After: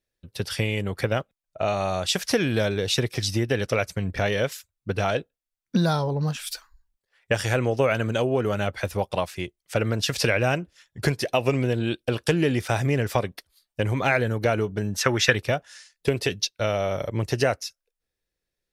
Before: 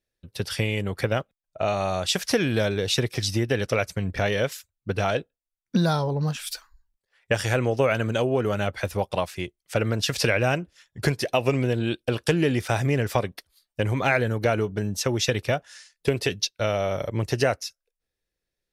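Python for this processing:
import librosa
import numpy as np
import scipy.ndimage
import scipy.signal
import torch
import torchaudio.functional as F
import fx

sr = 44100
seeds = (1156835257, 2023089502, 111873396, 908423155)

y = fx.peak_eq(x, sr, hz=1600.0, db=13.0, octaves=1.4, at=(14.93, 15.35))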